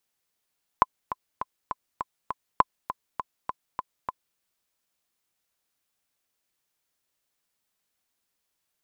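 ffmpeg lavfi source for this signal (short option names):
-f lavfi -i "aevalsrc='pow(10,(-3.5-12.5*gte(mod(t,6*60/202),60/202))/20)*sin(2*PI*1020*mod(t,60/202))*exp(-6.91*mod(t,60/202)/0.03)':d=3.56:s=44100"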